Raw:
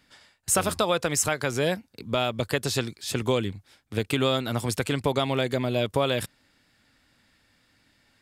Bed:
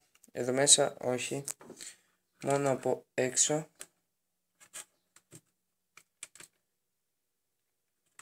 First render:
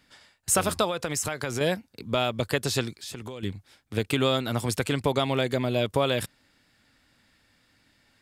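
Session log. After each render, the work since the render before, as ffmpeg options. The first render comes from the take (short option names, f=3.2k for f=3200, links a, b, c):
-filter_complex "[0:a]asettb=1/sr,asplit=3[a][b][c];[a]atrim=end=0.864[d];[b]atrim=start=0.86:end=1.61,asetpts=PTS-STARTPTS,afade=t=in:d=0.004:c=qsin,afade=t=out:st=0.746:d=0.004:c=qsin,acompressor=threshold=-24dB:ratio=6:attack=3.2:release=140:knee=1:detection=peak[e];[c]atrim=start=1.606[f];[d][e]acrossfade=d=0.004:c1=hsin:c2=qsin[g];[g][f]acrossfade=d=0.004:c1=qsin:c2=hsin,asettb=1/sr,asplit=3[h][i][j];[h]atrim=end=2.944[k];[i]atrim=start=2.94:end=3.43,asetpts=PTS-STARTPTS,afade=t=in:d=0.004:c=qsin,afade=t=out:st=0.486:d=0.004:c=qsin,acompressor=threshold=-35dB:ratio=5:attack=3.2:release=140:knee=1:detection=peak[l];[j]atrim=start=3.426[m];[k][l]acrossfade=d=0.004:c1=hsin:c2=qsin[n];[n][m]acrossfade=d=0.004:c1=qsin:c2=hsin"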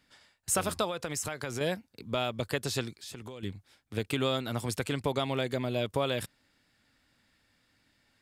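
-af "volume=-5.5dB"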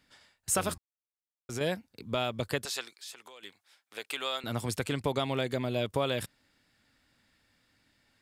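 -filter_complex "[0:a]asettb=1/sr,asplit=3[a][b][c];[a]atrim=end=2.654[d];[b]atrim=start=2.65:end=4.44,asetpts=PTS-STARTPTS,afade=t=in:d=0.004:c=qsin,afade=t=out:st=1.786:d=0.004:c=qsin,highpass=760[e];[c]atrim=start=4.436[f];[d][e]acrossfade=d=0.004:c1=hsin:c2=qsin[g];[g][f]acrossfade=d=0.004:c1=qsin:c2=hsin,asplit=3[h][i][j];[h]atrim=end=0.78,asetpts=PTS-STARTPTS,afade=t=out:st=0.776:d=0.004:c=hsin[k];[i]atrim=start=0.78:end=1.49,asetpts=PTS-STARTPTS,volume=0[l];[j]atrim=start=1.49,asetpts=PTS-STARTPTS,afade=t=in:d=0.004:c=hsin[m];[k][l][m]concat=n=3:v=0:a=1"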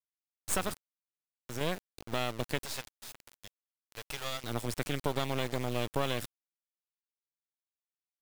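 -af "acrusher=bits=4:dc=4:mix=0:aa=0.000001"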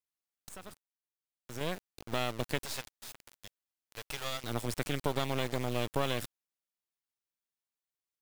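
-filter_complex "[0:a]asplit=2[a][b];[a]atrim=end=0.49,asetpts=PTS-STARTPTS,afade=t=out:st=0.486:d=0.004:c=hsin:silence=0.1[c];[b]atrim=start=0.49,asetpts=PTS-STARTPTS,afade=t=in:d=1.65:silence=0.1[d];[c][d]concat=n=2:v=0:a=1"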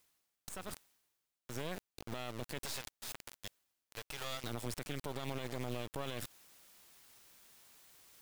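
-af "areverse,acompressor=mode=upward:threshold=-37dB:ratio=2.5,areverse,alimiter=level_in=3.5dB:limit=-24dB:level=0:latency=1:release=73,volume=-3.5dB"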